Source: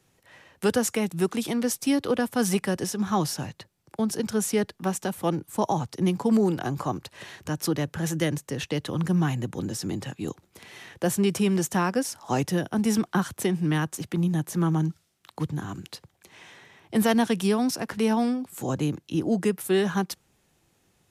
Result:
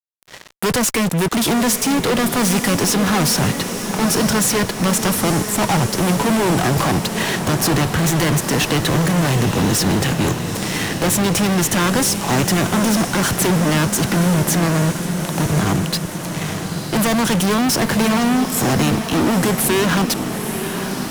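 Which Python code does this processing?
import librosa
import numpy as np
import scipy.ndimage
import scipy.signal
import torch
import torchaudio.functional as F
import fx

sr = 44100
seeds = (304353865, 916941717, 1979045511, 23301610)

y = fx.fuzz(x, sr, gain_db=41.0, gate_db=-48.0)
y = fx.echo_diffused(y, sr, ms=940, feedback_pct=67, wet_db=-8.0)
y = F.gain(torch.from_numpy(y), -2.5).numpy()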